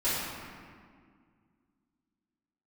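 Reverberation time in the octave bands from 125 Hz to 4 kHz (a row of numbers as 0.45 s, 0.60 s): 2.6 s, 2.8 s, 2.0 s, 1.9 s, 1.7 s, 1.2 s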